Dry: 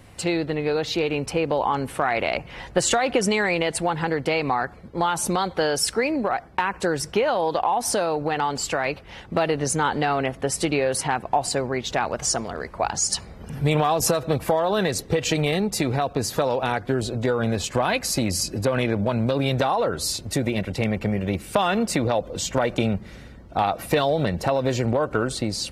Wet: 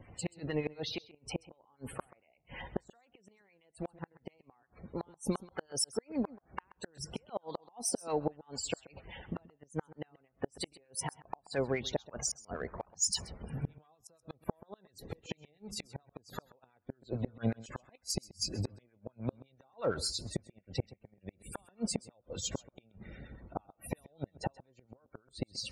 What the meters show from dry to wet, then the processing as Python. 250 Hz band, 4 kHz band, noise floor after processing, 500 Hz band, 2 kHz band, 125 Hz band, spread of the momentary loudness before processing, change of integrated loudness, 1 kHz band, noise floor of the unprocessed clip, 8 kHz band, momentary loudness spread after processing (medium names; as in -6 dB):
-15.5 dB, -13.0 dB, -74 dBFS, -18.0 dB, -21.5 dB, -15.5 dB, 5 LU, -15.5 dB, -23.0 dB, -43 dBFS, -12.0 dB, 17 LU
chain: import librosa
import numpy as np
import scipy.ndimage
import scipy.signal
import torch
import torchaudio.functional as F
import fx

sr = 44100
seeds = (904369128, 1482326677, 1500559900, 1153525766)

p1 = fx.spec_topn(x, sr, count=64)
p2 = fx.gate_flip(p1, sr, shuts_db=-13.0, range_db=-39)
p3 = 10.0 ** (-25.5 / 20.0) * np.tanh(p2 / 10.0 ** (-25.5 / 20.0))
p4 = p2 + (p3 * librosa.db_to_amplitude(-10.5))
p5 = fx.harmonic_tremolo(p4, sr, hz=8.7, depth_pct=70, crossover_hz=980.0)
p6 = p5 + 10.0 ** (-19.5 / 20.0) * np.pad(p5, (int(131 * sr / 1000.0), 0))[:len(p5)]
y = p6 * librosa.db_to_amplitude(-5.5)